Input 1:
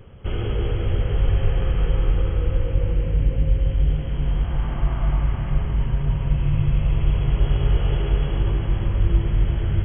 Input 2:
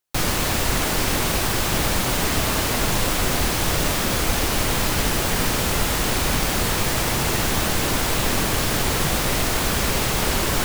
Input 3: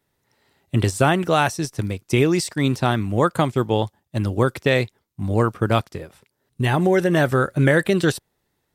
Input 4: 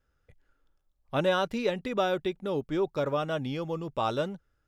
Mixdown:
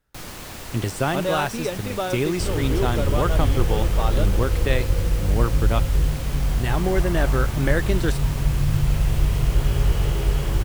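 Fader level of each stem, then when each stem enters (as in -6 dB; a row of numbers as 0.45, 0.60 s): -0.5, -14.5, -6.0, +0.5 dB; 2.15, 0.00, 0.00, 0.00 s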